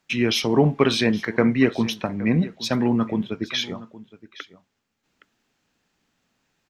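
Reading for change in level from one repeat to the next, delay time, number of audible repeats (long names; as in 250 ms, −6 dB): repeats not evenly spaced, 817 ms, 1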